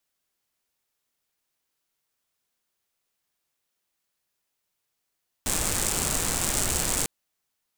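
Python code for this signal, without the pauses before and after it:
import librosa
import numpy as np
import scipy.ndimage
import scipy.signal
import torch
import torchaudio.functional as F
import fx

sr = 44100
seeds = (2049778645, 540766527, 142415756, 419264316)

y = fx.rain(sr, seeds[0], length_s=1.6, drops_per_s=160.0, hz=7900.0, bed_db=0)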